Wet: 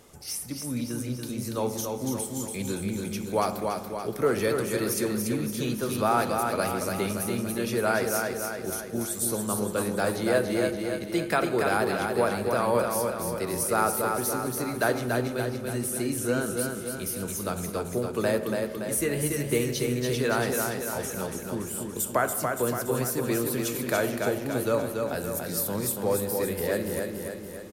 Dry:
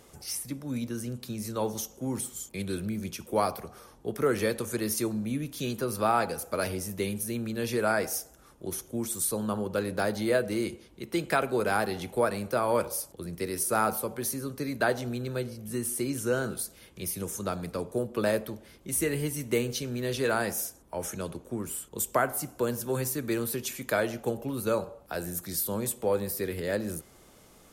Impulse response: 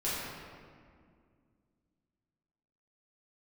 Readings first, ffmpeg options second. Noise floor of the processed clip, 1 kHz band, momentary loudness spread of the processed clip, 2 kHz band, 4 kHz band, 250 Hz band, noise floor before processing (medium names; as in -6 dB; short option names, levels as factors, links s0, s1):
-37 dBFS, +3.0 dB, 7 LU, +3.0 dB, +2.5 dB, +3.0 dB, -56 dBFS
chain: -filter_complex "[0:a]aecho=1:1:285|570|855|1140|1425|1710|1995|2280:0.596|0.334|0.187|0.105|0.0586|0.0328|0.0184|0.0103,asplit=2[s0][s1];[1:a]atrim=start_sample=2205,asetrate=57330,aresample=44100[s2];[s1][s2]afir=irnorm=-1:irlink=0,volume=0.158[s3];[s0][s3]amix=inputs=2:normalize=0"